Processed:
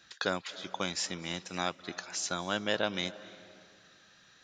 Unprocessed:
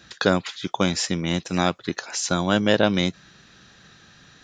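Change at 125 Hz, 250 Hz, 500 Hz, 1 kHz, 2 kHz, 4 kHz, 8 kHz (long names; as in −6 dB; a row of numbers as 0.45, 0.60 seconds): −17.5, −16.5, −12.5, −10.0, −8.5, −8.0, −8.0 decibels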